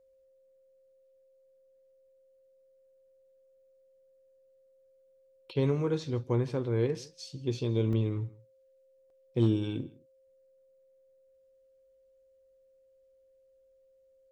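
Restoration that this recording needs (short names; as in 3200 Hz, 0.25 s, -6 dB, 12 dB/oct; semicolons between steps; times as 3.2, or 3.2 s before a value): clip repair -16 dBFS; notch 530 Hz, Q 30; interpolate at 7.93/9.1, 2.5 ms; inverse comb 0.16 s -22.5 dB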